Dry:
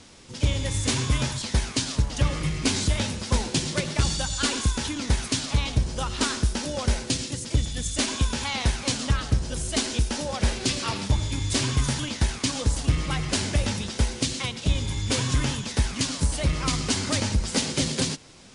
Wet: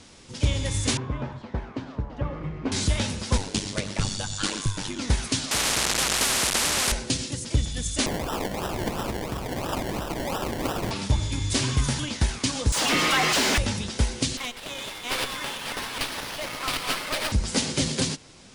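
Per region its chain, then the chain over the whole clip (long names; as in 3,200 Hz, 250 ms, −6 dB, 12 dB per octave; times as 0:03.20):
0:00.97–0:02.72: low-pass filter 1,100 Hz + low-shelf EQ 180 Hz −9 dB
0:03.37–0:04.99: ring modulation 49 Hz + floating-point word with a short mantissa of 8 bits
0:05.51–0:06.92: linear delta modulator 64 kbit/s, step −22.5 dBFS + low-pass filter 1,700 Hz 6 dB per octave + every bin compressed towards the loudest bin 10 to 1
0:08.06–0:10.91: meter weighting curve D + downward compressor 12 to 1, threshold −24 dBFS + sample-and-hold swept by an LFO 28×, swing 60% 2.9 Hz
0:12.72–0:13.58: high-pass filter 190 Hz 24 dB per octave + all-pass dispersion lows, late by 55 ms, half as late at 940 Hz + mid-hump overdrive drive 31 dB, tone 3,700 Hz, clips at −13.5 dBFS
0:14.37–0:17.32: delay that plays each chunk backwards 404 ms, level −1.5 dB + high-pass filter 610 Hz + windowed peak hold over 5 samples
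whole clip: no processing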